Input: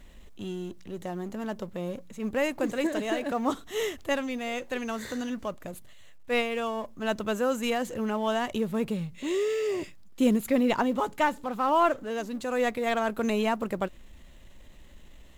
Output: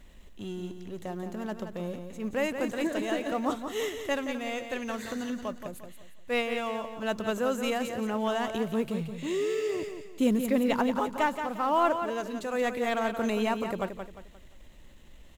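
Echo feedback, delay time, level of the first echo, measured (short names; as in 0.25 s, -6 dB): 35%, 0.176 s, -8.0 dB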